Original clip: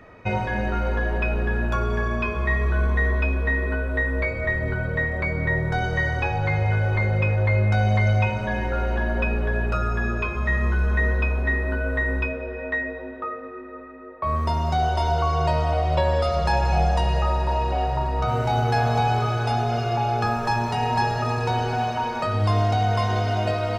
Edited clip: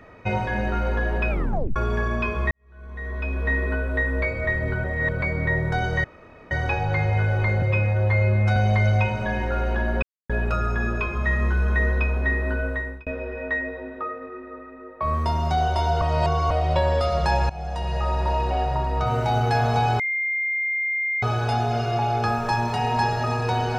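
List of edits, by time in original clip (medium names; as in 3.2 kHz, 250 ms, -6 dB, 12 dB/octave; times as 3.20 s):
1.30 s: tape stop 0.46 s
2.51–3.52 s: fade in quadratic
4.84–5.22 s: reverse
6.04 s: insert room tone 0.47 s
7.15–7.78 s: stretch 1.5×
9.24–9.51 s: mute
11.82–12.28 s: fade out
15.23–15.72 s: reverse
16.71–17.46 s: fade in, from -19.5 dB
19.21 s: add tone 2.11 kHz -22 dBFS 1.23 s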